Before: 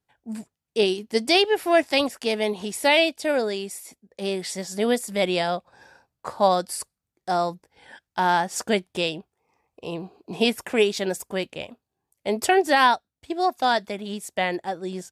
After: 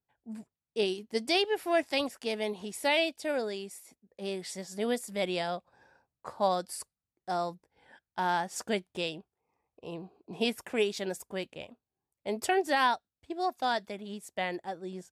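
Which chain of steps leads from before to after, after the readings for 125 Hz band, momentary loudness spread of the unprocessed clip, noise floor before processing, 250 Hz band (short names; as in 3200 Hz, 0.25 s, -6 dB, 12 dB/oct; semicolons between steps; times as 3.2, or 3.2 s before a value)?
-8.5 dB, 18 LU, -85 dBFS, -8.5 dB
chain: mismatched tape noise reduction decoder only; gain -8.5 dB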